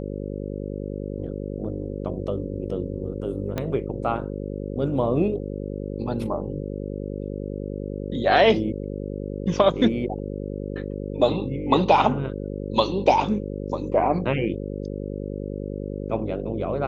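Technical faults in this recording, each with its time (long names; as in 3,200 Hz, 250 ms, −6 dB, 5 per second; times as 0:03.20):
mains buzz 50 Hz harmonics 11 −31 dBFS
0:03.58: click −13 dBFS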